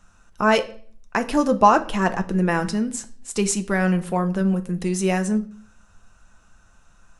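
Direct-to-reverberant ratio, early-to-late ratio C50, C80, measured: 7.0 dB, 16.5 dB, 20.5 dB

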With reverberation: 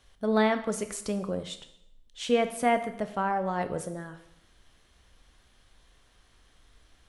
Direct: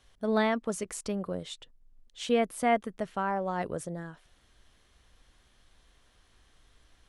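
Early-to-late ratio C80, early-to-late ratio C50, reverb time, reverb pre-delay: 14.5 dB, 11.5 dB, 0.80 s, 7 ms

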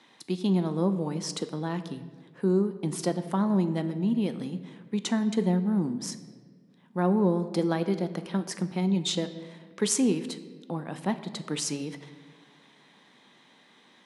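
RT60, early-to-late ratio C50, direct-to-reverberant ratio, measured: 1.7 s, 12.5 dB, 9.5 dB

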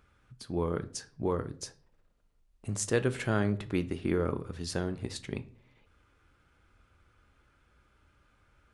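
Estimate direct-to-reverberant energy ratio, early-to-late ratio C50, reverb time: 11.0 dB, 18.5 dB, 0.45 s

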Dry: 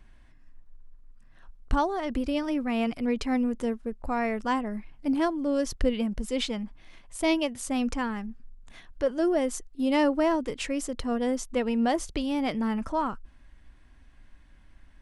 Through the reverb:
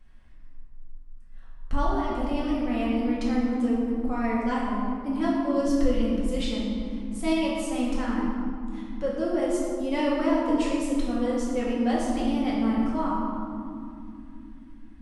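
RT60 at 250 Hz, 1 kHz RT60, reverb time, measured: 4.7 s, 2.4 s, 2.8 s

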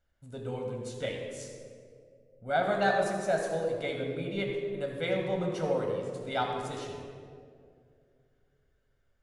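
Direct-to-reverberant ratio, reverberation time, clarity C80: 0.5 dB, 2.3 s, 4.0 dB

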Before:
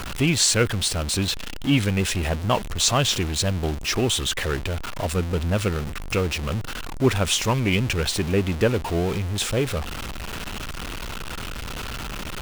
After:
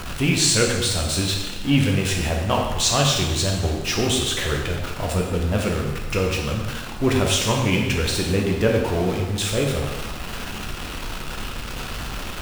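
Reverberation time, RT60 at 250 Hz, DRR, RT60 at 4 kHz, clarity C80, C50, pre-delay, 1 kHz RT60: 1.2 s, 1.2 s, 0.0 dB, 1.1 s, 5.0 dB, 3.5 dB, 6 ms, 1.2 s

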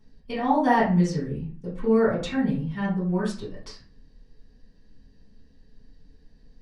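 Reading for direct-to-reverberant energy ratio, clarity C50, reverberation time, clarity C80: −10.5 dB, 5.5 dB, 0.40 s, 11.5 dB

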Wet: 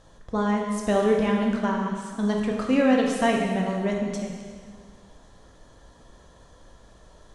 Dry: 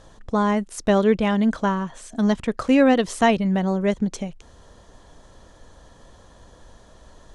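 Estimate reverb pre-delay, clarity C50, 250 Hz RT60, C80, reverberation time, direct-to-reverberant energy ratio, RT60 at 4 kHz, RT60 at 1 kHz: 6 ms, 2.0 dB, 1.9 s, 3.5 dB, 1.8 s, −0.5 dB, 1.7 s, 1.8 s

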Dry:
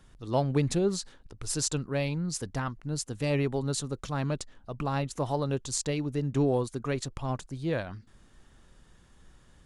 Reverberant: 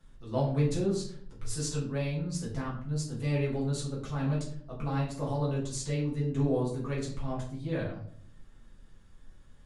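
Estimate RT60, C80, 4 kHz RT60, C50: 0.55 s, 9.5 dB, 0.35 s, 6.0 dB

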